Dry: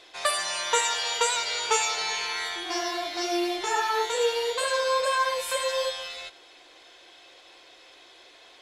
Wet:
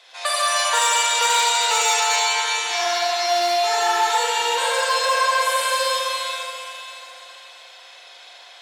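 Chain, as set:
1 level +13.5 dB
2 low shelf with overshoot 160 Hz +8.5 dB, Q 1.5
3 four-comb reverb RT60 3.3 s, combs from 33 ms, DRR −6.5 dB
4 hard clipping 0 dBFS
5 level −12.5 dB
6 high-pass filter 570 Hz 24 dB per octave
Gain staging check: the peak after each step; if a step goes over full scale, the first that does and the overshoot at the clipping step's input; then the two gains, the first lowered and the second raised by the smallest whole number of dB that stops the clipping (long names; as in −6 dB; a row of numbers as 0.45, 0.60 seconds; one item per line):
+1.5, +1.5, +8.0, 0.0, −12.5, −7.0 dBFS
step 1, 8.0 dB
step 1 +5.5 dB, step 5 −4.5 dB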